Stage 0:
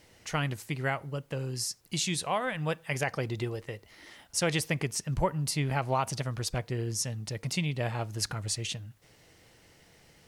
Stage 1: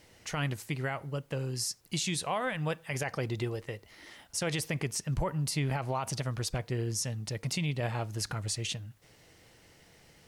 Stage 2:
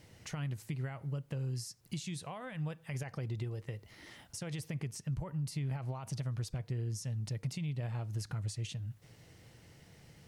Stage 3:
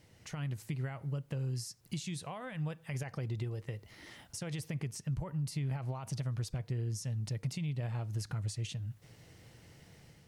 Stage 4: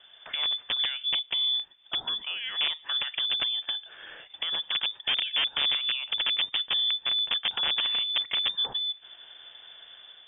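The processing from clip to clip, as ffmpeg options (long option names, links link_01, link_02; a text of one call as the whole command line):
ffmpeg -i in.wav -af "alimiter=limit=-22.5dB:level=0:latency=1:release=34" out.wav
ffmpeg -i in.wav -af "acompressor=threshold=-41dB:ratio=4,equalizer=frequency=120:width=0.77:gain=10.5,volume=-3dB" out.wav
ffmpeg -i in.wav -af "dynaudnorm=framelen=140:gausssize=5:maxgain=5dB,volume=-4dB" out.wav
ffmpeg -i in.wav -af "aeval=exprs='(mod(31.6*val(0)+1,2)-1)/31.6':channel_layout=same,lowpass=frequency=3100:width_type=q:width=0.5098,lowpass=frequency=3100:width_type=q:width=0.6013,lowpass=frequency=3100:width_type=q:width=0.9,lowpass=frequency=3100:width_type=q:width=2.563,afreqshift=-3600,volume=8.5dB" out.wav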